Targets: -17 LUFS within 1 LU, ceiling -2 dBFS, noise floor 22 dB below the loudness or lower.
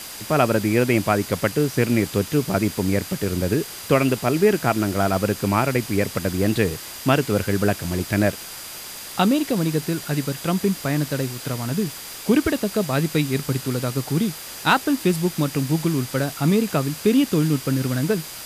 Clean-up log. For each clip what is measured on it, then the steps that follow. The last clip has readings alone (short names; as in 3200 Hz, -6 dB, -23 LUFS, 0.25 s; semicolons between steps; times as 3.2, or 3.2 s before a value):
steady tone 4800 Hz; tone level -43 dBFS; noise floor -36 dBFS; noise floor target -44 dBFS; loudness -22.0 LUFS; peak -4.5 dBFS; loudness target -17.0 LUFS
-> notch 4800 Hz, Q 30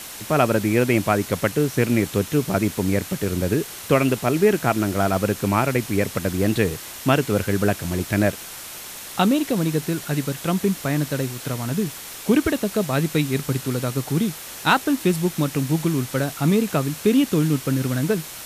steady tone none; noise floor -37 dBFS; noise floor target -44 dBFS
-> noise print and reduce 7 dB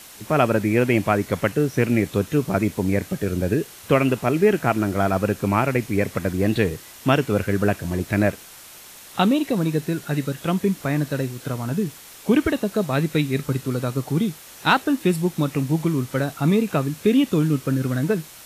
noise floor -43 dBFS; noise floor target -44 dBFS
-> noise print and reduce 6 dB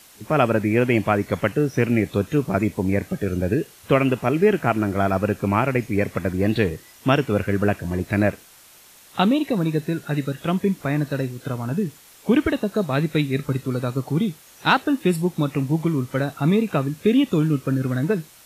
noise floor -49 dBFS; loudness -22.0 LUFS; peak -4.5 dBFS; loudness target -17.0 LUFS
-> gain +5 dB; limiter -2 dBFS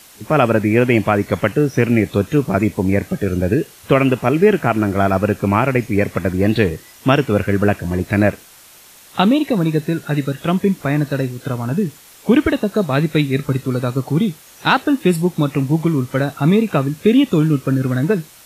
loudness -17.5 LUFS; peak -2.0 dBFS; noise floor -44 dBFS